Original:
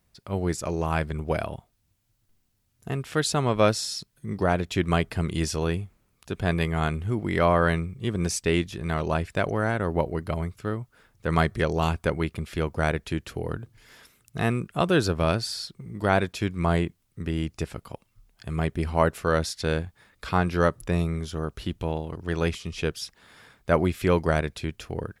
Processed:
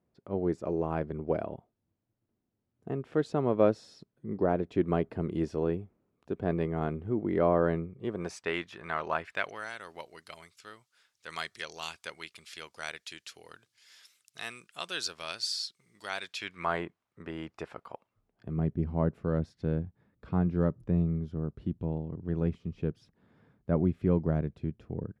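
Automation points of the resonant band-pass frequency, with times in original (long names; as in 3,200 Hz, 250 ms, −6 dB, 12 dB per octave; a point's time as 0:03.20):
resonant band-pass, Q 1
0:07.82 360 Hz
0:08.54 1,300 Hz
0:09.21 1,300 Hz
0:09.70 5,100 Hz
0:16.20 5,100 Hz
0:16.84 940 Hz
0:17.94 940 Hz
0:18.68 180 Hz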